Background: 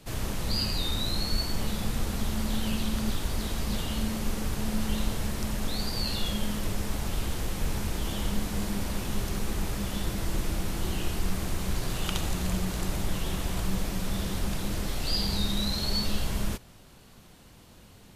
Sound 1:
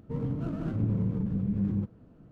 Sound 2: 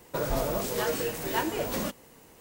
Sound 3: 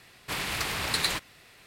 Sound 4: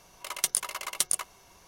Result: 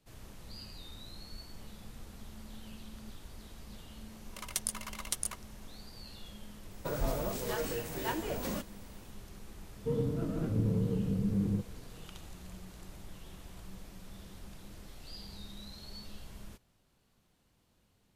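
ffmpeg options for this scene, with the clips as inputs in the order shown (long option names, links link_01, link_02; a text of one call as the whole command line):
ffmpeg -i bed.wav -i cue0.wav -i cue1.wav -i cue2.wav -i cue3.wav -filter_complex "[0:a]volume=-19dB[link_01];[2:a]lowshelf=frequency=160:gain=6.5[link_02];[1:a]equalizer=frequency=460:width=5.2:gain=10.5[link_03];[4:a]atrim=end=1.67,asetpts=PTS-STARTPTS,volume=-8dB,afade=type=in:duration=0.004:curve=hsin,afade=type=out:start_time=1.666:duration=0.004:curve=hsin,adelay=4120[link_04];[link_02]atrim=end=2.4,asetpts=PTS-STARTPTS,volume=-7dB,afade=type=in:duration=0.004:curve=hsin,afade=type=out:start_time=2.396:duration=0.004:curve=hsin,adelay=6710[link_05];[link_03]atrim=end=2.31,asetpts=PTS-STARTPTS,volume=-2.5dB,afade=type=in:duration=0.004:curve=hsin,afade=type=out:start_time=2.306:duration=0.004:curve=hsin,adelay=9760[link_06];[link_01][link_04][link_05][link_06]amix=inputs=4:normalize=0" out.wav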